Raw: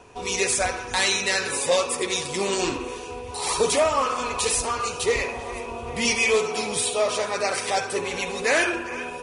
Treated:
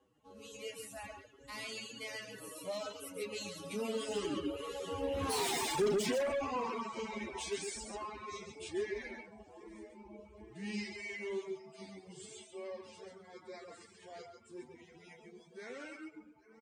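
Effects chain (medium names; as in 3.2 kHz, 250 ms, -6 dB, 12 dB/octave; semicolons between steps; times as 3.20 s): Doppler pass-by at 3.00 s, 41 m/s, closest 2.7 m; on a send: delay 76 ms -4.5 dB; on the sum: time stretch by phase-locked vocoder 1.8×; doubling 34 ms -13 dB; in parallel at 0 dB: compression, threshold -47 dBFS, peak gain reduction 19 dB; on the sum: high-pass 41 Hz 24 dB/octave; overload inside the chain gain 34.5 dB; peaking EQ 240 Hz +13.5 dB 1.9 oct; reverb removal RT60 1.4 s; dynamic bell 2.5 kHz, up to +5 dB, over -59 dBFS, Q 0.97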